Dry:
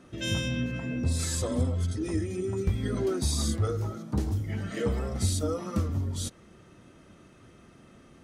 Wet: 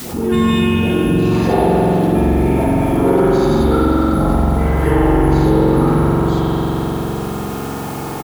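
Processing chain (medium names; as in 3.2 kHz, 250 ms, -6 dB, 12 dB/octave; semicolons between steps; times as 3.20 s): phase dispersion highs, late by 117 ms, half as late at 880 Hz; formant-preserving pitch shift -6.5 st; high-pass 100 Hz 6 dB/octave; on a send: feedback delay 91 ms, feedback 56%, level -17.5 dB; on the sum: careless resampling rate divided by 4×, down filtered, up zero stuff; low-pass 4.3 kHz 12 dB/octave; peaking EQ 830 Hz +14 dB 2.2 oct; band-stop 1.5 kHz, Q 28; spring tank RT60 3.7 s, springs 44 ms, chirp 55 ms, DRR -8 dB; in parallel at -10 dB: word length cut 6-bit, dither triangular; on the sum: bass shelf 370 Hz +7.5 dB; level flattener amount 50%; trim -3 dB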